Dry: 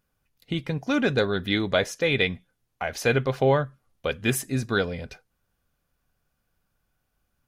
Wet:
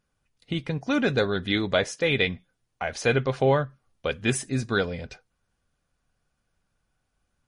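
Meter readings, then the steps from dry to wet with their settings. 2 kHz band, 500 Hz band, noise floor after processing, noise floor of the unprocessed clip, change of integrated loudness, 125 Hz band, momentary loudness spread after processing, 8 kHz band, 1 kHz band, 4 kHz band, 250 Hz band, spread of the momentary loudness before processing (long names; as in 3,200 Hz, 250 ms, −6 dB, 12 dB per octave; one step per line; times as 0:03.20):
−0.5 dB, −0.5 dB, −78 dBFS, −77 dBFS, −0.5 dB, −0.5 dB, 11 LU, −0.5 dB, −0.5 dB, −0.5 dB, −0.5 dB, 11 LU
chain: MP3 40 kbit/s 32,000 Hz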